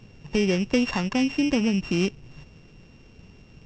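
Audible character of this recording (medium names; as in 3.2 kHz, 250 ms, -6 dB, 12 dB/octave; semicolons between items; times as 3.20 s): a buzz of ramps at a fixed pitch in blocks of 16 samples; µ-law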